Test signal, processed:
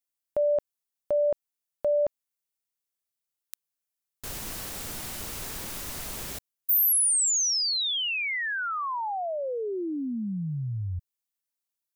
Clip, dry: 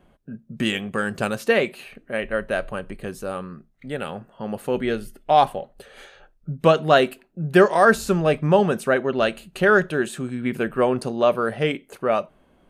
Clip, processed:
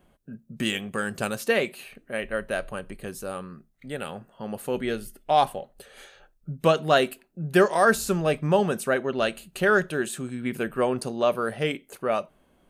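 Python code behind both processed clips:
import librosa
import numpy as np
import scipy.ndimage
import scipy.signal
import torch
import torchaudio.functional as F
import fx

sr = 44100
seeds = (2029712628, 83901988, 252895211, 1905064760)

y = fx.high_shelf(x, sr, hz=5500.0, db=10.0)
y = y * 10.0 ** (-4.5 / 20.0)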